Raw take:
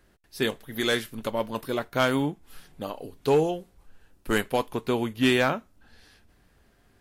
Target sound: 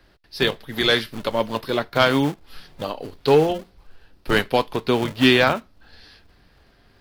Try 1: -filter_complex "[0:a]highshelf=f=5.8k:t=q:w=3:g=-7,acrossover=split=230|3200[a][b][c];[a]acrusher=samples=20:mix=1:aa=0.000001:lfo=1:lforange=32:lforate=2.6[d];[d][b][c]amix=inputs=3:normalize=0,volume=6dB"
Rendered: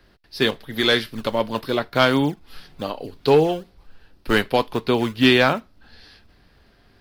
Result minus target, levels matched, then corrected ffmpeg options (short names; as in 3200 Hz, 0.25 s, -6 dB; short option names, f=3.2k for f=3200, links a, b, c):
decimation with a swept rate: distortion -11 dB
-filter_complex "[0:a]highshelf=f=5.8k:t=q:w=3:g=-7,acrossover=split=230|3200[a][b][c];[a]acrusher=samples=67:mix=1:aa=0.000001:lfo=1:lforange=107:lforate=2.6[d];[d][b][c]amix=inputs=3:normalize=0,volume=6dB"